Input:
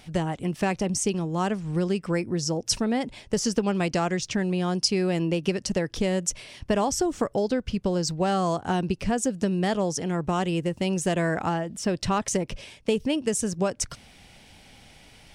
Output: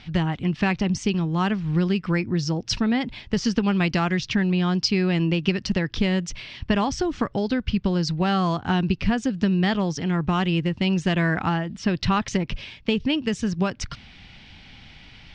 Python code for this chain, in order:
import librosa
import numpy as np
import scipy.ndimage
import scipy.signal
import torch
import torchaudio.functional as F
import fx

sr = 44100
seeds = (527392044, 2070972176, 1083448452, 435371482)

y = scipy.signal.sosfilt(scipy.signal.butter(4, 4400.0, 'lowpass', fs=sr, output='sos'), x)
y = fx.peak_eq(y, sr, hz=540.0, db=-11.5, octaves=1.4)
y = y * 10.0 ** (7.0 / 20.0)